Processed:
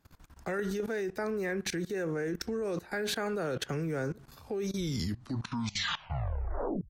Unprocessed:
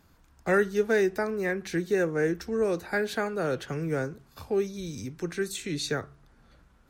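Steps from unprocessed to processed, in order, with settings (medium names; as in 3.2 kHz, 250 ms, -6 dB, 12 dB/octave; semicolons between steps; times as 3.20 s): tape stop on the ending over 2.18 s; level held to a coarse grid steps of 20 dB; trim +7.5 dB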